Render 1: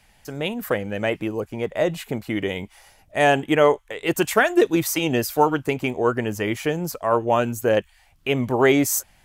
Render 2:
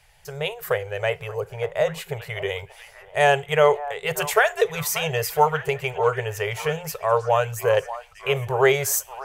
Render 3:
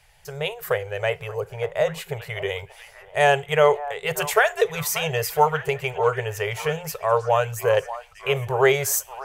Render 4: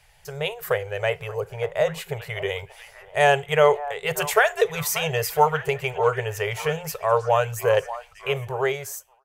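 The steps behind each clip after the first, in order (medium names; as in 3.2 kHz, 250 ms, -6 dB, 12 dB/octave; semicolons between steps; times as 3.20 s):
repeats whose band climbs or falls 584 ms, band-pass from 920 Hz, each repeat 0.7 oct, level -10.5 dB; FDN reverb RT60 0.35 s, low-frequency decay 0.85×, high-frequency decay 0.95×, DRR 17.5 dB; FFT band-reject 170–380 Hz
no audible change
fade out at the end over 1.22 s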